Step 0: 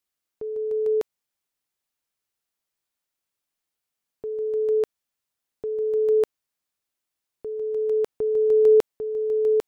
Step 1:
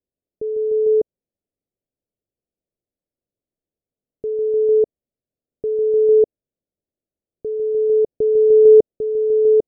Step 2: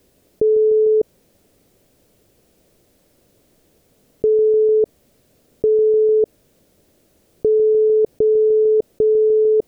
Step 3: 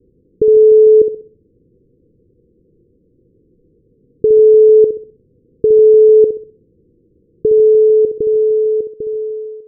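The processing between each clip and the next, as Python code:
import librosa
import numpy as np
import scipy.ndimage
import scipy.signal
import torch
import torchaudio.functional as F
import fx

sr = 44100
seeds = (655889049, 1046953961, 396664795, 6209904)

y1 = scipy.signal.sosfilt(scipy.signal.butter(6, 600.0, 'lowpass', fs=sr, output='sos'), x)
y1 = y1 * librosa.db_to_amplitude(7.0)
y2 = fx.env_flatten(y1, sr, amount_pct=100)
y2 = y2 * librosa.db_to_amplitude(-7.0)
y3 = fx.fade_out_tail(y2, sr, length_s=2.48)
y3 = scipy.signal.sosfilt(scipy.signal.cheby1(6, 3, 500.0, 'lowpass', fs=sr, output='sos'), y3)
y3 = fx.room_flutter(y3, sr, wall_m=11.1, rt60_s=0.45)
y3 = y3 * librosa.db_to_amplitude(7.0)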